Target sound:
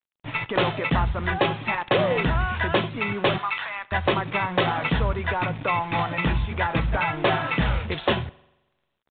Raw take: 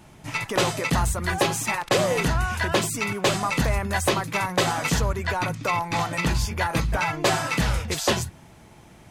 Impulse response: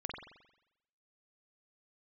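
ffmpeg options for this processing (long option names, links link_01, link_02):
-filter_complex "[0:a]asettb=1/sr,asplit=3[link_01][link_02][link_03];[link_01]atrim=end=3.384[link_04];[link_02]atrim=start=3.38:end=3.92,asetpts=PTS-STARTPTS,afade=type=in:duration=0.004:curve=qsin,afade=type=out:start_time=0.536:duration=0.004:curve=qsin,highpass=frequency=950:width=0.5412,highpass=frequency=950:width=1.3066[link_05];[link_03]atrim=start=3.916[link_06];[link_04][link_05]acrossfade=duration=0.004:curve1=hsin:curve2=qsin[link_07];[link_07][link_06]acrossfade=duration=0.004:curve1=qsin:curve2=hsin,aeval=exprs='sgn(val(0))*max(abs(val(0))-0.00158,0)':channel_layout=same,acrusher=bits=5:mix=0:aa=0.5,asplit=2[link_08][link_09];[1:a]atrim=start_sample=2205[link_10];[link_09][link_10]afir=irnorm=-1:irlink=0,volume=-18dB[link_11];[link_08][link_11]amix=inputs=2:normalize=0" -ar 8000 -c:a pcm_mulaw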